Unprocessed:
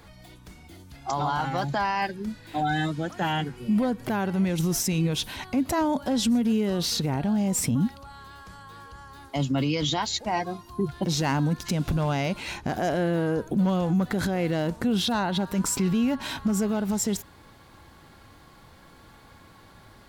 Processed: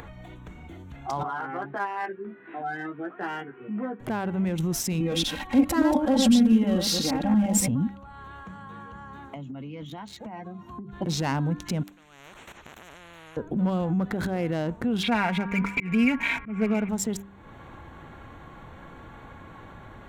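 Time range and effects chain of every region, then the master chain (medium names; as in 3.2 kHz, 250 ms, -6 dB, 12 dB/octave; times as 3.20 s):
1.23–4.00 s: cabinet simulation 380–2300 Hz, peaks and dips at 390 Hz +6 dB, 560 Hz -9 dB, 890 Hz -8 dB, 2.2 kHz -3 dB + doubling 15 ms -3 dB
5.00–7.68 s: chunks repeated in reverse 117 ms, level -3 dB + comb 3.7 ms, depth 94%
8.46–10.93 s: high-pass 79 Hz + peaking EQ 200 Hz +11.5 dB 0.4 oct + compression 8:1, threshold -34 dBFS
11.83–13.37 s: level held to a coarse grid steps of 17 dB + spectrum-flattening compressor 10:1
15.03–16.89 s: comb 4.3 ms, depth 56% + slow attack 177 ms + resonant low-pass 2.3 kHz, resonance Q 16
whole clip: local Wiener filter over 9 samples; de-hum 98.77 Hz, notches 4; upward compressor, threshold -33 dBFS; trim -1.5 dB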